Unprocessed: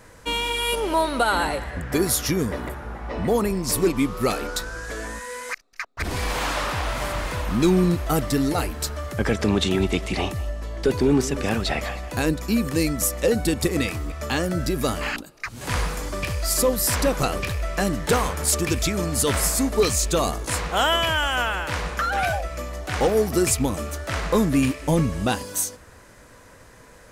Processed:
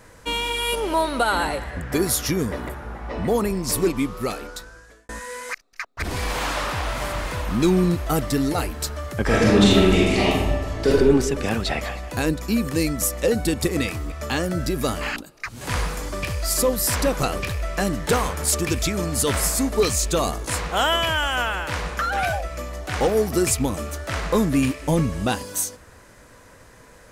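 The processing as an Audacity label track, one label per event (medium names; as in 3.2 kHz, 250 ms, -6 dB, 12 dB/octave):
3.800000	5.090000	fade out
9.240000	10.900000	reverb throw, RT60 1.2 s, DRR -6 dB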